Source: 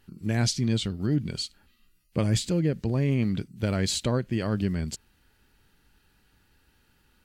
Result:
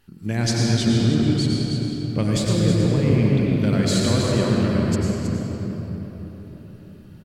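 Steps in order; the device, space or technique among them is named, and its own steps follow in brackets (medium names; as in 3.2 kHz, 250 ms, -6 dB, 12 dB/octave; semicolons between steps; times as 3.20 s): cave (delay 320 ms -8.5 dB; reverberation RT60 4.3 s, pre-delay 87 ms, DRR -3 dB); trim +1.5 dB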